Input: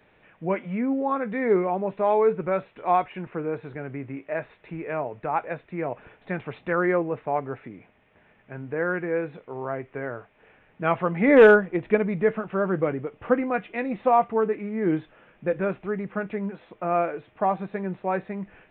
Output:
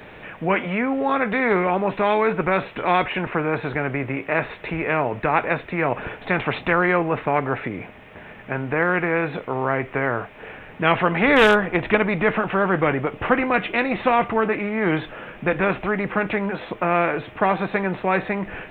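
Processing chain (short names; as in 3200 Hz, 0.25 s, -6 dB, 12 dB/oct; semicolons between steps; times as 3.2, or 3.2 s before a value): spectral compressor 2:1; gain +5 dB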